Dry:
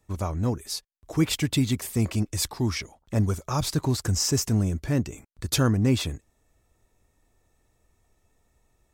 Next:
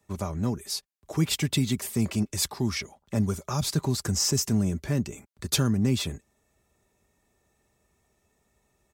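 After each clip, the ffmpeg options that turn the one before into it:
-filter_complex "[0:a]highpass=71,aecho=1:1:5:0.35,acrossover=split=250|3000[s0][s1][s2];[s1]acompressor=threshold=0.0316:ratio=6[s3];[s0][s3][s2]amix=inputs=3:normalize=0"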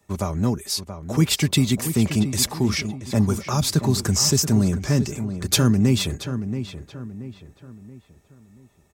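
-filter_complex "[0:a]asplit=2[s0][s1];[s1]adelay=679,lowpass=f=2400:p=1,volume=0.335,asplit=2[s2][s3];[s3]adelay=679,lowpass=f=2400:p=1,volume=0.41,asplit=2[s4][s5];[s5]adelay=679,lowpass=f=2400:p=1,volume=0.41,asplit=2[s6][s7];[s7]adelay=679,lowpass=f=2400:p=1,volume=0.41[s8];[s0][s2][s4][s6][s8]amix=inputs=5:normalize=0,volume=2"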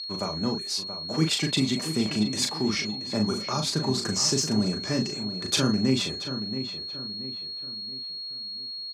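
-filter_complex "[0:a]aeval=exprs='val(0)+0.0398*sin(2*PI*4300*n/s)':c=same,highpass=200,lowpass=6900,asplit=2[s0][s1];[s1]adelay=38,volume=0.562[s2];[s0][s2]amix=inputs=2:normalize=0,volume=0.631"

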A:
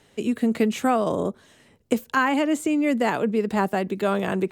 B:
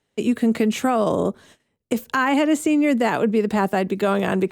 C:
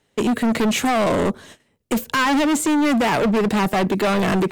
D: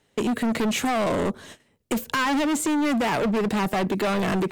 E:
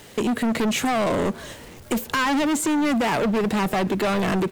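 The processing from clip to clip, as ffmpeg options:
-af "agate=range=0.1:threshold=0.00282:ratio=16:detection=peak,alimiter=limit=0.2:level=0:latency=1:release=52,volume=1.58"
-af "asoftclip=type=hard:threshold=0.0668,volume=2.37"
-af "acompressor=threshold=0.0501:ratio=2"
-filter_complex "[0:a]aeval=exprs='val(0)+0.5*0.00891*sgn(val(0))':c=same,asplit=5[s0][s1][s2][s3][s4];[s1]adelay=493,afreqshift=-86,volume=0.0631[s5];[s2]adelay=986,afreqshift=-172,volume=0.0398[s6];[s3]adelay=1479,afreqshift=-258,volume=0.0251[s7];[s4]adelay=1972,afreqshift=-344,volume=0.0158[s8];[s0][s5][s6][s7][s8]amix=inputs=5:normalize=0,volume=1.12"

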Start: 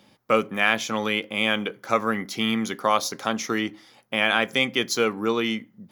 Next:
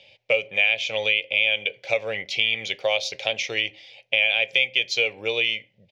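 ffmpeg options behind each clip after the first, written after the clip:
-af "firequalizer=gain_entry='entry(100,0);entry(230,-21);entry(550,7);entry(1200,-21);entry(2400,15);entry(4300,4);entry(11000,-22)':delay=0.05:min_phase=1,acompressor=threshold=0.112:ratio=3"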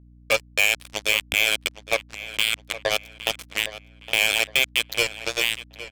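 -filter_complex "[0:a]acrusher=bits=2:mix=0:aa=0.5,aeval=exprs='val(0)+0.00355*(sin(2*PI*60*n/s)+sin(2*PI*2*60*n/s)/2+sin(2*PI*3*60*n/s)/3+sin(2*PI*4*60*n/s)/4+sin(2*PI*5*60*n/s)/5)':c=same,asplit=2[s0][s1];[s1]adelay=813,lowpass=f=3900:p=1,volume=0.2,asplit=2[s2][s3];[s3]adelay=813,lowpass=f=3900:p=1,volume=0.35,asplit=2[s4][s5];[s5]adelay=813,lowpass=f=3900:p=1,volume=0.35[s6];[s0][s2][s4][s6]amix=inputs=4:normalize=0"

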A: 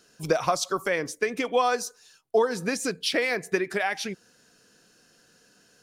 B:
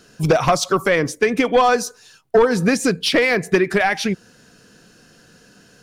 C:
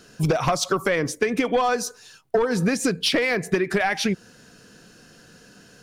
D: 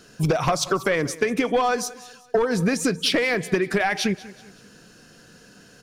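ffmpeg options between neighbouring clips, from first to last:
-af "aeval=exprs='0.376*sin(PI/2*2*val(0)/0.376)':c=same,bass=f=250:g=7,treble=f=4000:g=-4"
-af "acompressor=threshold=0.126:ratio=6"
-af "aecho=1:1:189|378|567:0.112|0.0482|0.0207"

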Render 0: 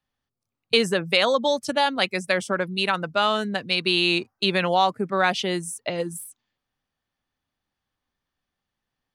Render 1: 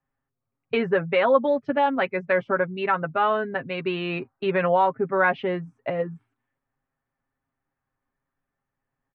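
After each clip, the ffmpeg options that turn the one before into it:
-af "lowpass=f=2000:w=0.5412,lowpass=f=2000:w=1.3066,aecho=1:1:7.4:0.61"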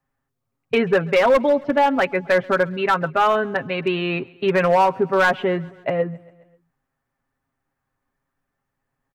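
-af "volume=5.96,asoftclip=hard,volume=0.168,aecho=1:1:134|268|402|536:0.0631|0.0379|0.0227|0.0136,volume=1.78"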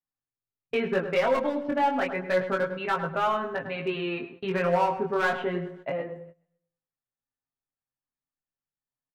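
-filter_complex "[0:a]asplit=2[s0][s1];[s1]adelay=103,lowpass=f=1900:p=1,volume=0.376,asplit=2[s2][s3];[s3]adelay=103,lowpass=f=1900:p=1,volume=0.34,asplit=2[s4][s5];[s5]adelay=103,lowpass=f=1900:p=1,volume=0.34,asplit=2[s6][s7];[s7]adelay=103,lowpass=f=1900:p=1,volume=0.34[s8];[s0][s2][s4][s6][s8]amix=inputs=5:normalize=0,flanger=delay=17.5:depth=6.2:speed=0.29,agate=range=0.178:threshold=0.00891:ratio=16:detection=peak,volume=0.531"

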